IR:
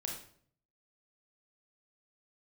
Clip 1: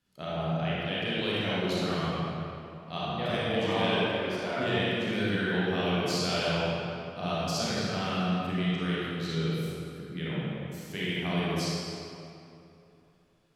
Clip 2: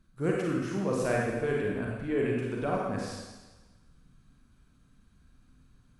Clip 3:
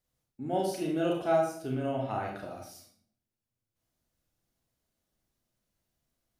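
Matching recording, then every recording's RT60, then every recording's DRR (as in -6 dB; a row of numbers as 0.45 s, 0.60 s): 3; 2.8 s, 1.2 s, 0.55 s; -8.5 dB, -3.0 dB, -0.5 dB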